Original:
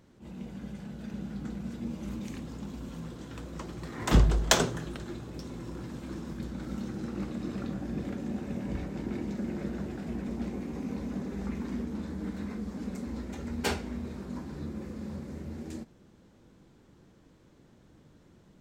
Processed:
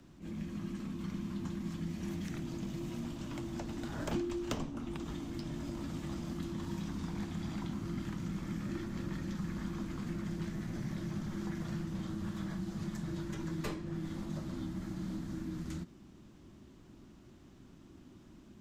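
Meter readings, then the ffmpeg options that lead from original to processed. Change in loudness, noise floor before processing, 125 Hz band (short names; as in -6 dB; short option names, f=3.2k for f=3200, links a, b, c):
-5.0 dB, -60 dBFS, -3.5 dB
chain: -filter_complex "[0:a]afreqshift=-400,acrossover=split=140|870|3500[a][b][c][d];[a]acompressor=threshold=-47dB:ratio=4[e];[b]acompressor=threshold=-41dB:ratio=4[f];[c]acompressor=threshold=-52dB:ratio=4[g];[d]acompressor=threshold=-57dB:ratio=4[h];[e][f][g][h]amix=inputs=4:normalize=0,volume=2.5dB"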